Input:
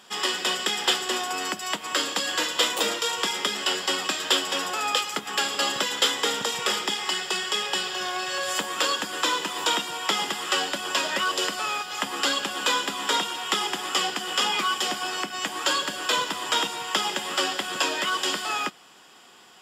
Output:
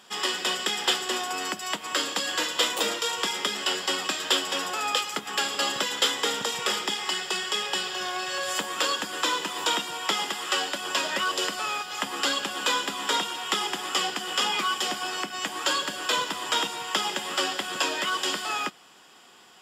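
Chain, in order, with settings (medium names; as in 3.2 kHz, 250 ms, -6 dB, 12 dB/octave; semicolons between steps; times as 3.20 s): 10.13–10.82 s: bass shelf 160 Hz -8.5 dB; trim -1.5 dB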